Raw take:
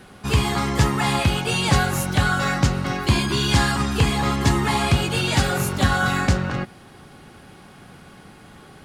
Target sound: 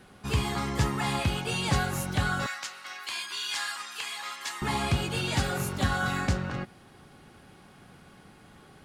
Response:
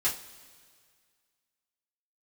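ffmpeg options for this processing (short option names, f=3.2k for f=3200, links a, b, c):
-filter_complex "[0:a]asettb=1/sr,asplit=3[a][b][c];[a]atrim=end=2.464[d];[b]atrim=start=2.46:end=4.62,asetpts=PTS-STARTPTS,afade=t=in:d=0.004:c=qsin,afade=t=out:st=2.156:d=0.004:c=qsin,highpass=1.4k[e];[c]atrim=start=4.616[f];[d][e]acrossfade=d=0.004:c1=hsin:c2=qsin[g];[g][f]acrossfade=d=0.004:c1=qsin:c2=hsin,volume=-8dB"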